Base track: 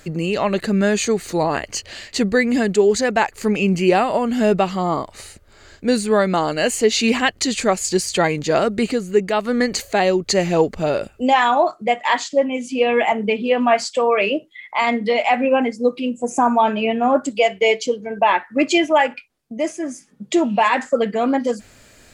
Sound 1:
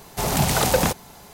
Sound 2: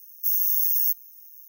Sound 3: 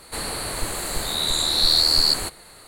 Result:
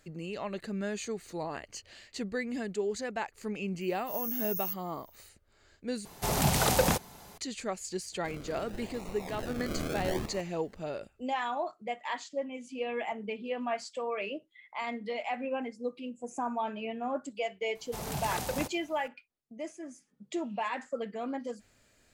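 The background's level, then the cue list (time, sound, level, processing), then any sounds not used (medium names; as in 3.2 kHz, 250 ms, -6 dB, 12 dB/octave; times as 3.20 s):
base track -17.5 dB
3.81 s: add 2 -13.5 dB + slow attack 146 ms
6.05 s: replace with 1 -6 dB
8.12 s: add 3 -16.5 dB + decimation with a swept rate 38×, swing 60% 0.77 Hz
17.75 s: add 1 -15.5 dB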